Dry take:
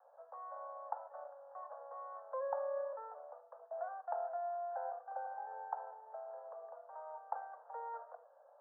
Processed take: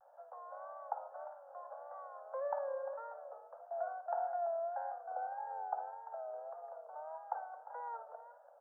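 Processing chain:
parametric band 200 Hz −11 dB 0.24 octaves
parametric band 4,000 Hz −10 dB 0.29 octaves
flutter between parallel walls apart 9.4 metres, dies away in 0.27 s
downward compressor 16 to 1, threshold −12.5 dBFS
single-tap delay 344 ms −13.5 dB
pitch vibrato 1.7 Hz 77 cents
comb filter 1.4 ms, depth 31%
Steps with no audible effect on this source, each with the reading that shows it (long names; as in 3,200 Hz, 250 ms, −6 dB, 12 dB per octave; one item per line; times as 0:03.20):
parametric band 200 Hz: nothing at its input below 430 Hz
parametric band 4,000 Hz: nothing at its input above 1,600 Hz
downward compressor, threshold −12.5 dBFS: peak of its input −24.5 dBFS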